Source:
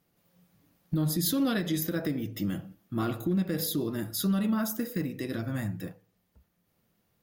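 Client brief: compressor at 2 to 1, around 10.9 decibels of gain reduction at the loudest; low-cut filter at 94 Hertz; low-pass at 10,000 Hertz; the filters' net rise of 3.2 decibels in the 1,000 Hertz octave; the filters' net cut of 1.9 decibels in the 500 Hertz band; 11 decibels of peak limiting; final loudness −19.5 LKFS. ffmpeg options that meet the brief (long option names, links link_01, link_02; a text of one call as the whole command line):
ffmpeg -i in.wav -af "highpass=94,lowpass=10000,equalizer=frequency=500:width_type=o:gain=-4,equalizer=frequency=1000:width_type=o:gain=5.5,acompressor=threshold=-45dB:ratio=2,volume=27.5dB,alimiter=limit=-11dB:level=0:latency=1" out.wav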